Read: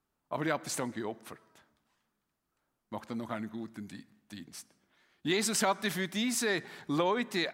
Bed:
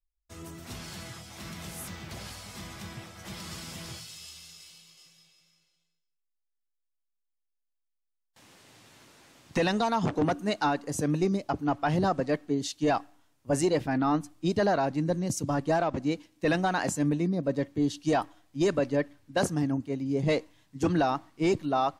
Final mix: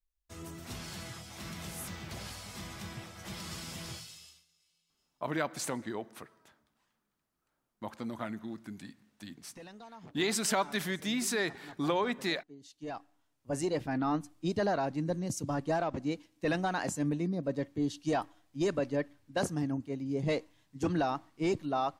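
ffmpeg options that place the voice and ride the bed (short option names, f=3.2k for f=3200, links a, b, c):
-filter_complex "[0:a]adelay=4900,volume=-1dB[a];[1:a]volume=17dB,afade=t=out:st=3.93:d=0.52:silence=0.0794328,afade=t=in:st=12.59:d=1.36:silence=0.11885[b];[a][b]amix=inputs=2:normalize=0"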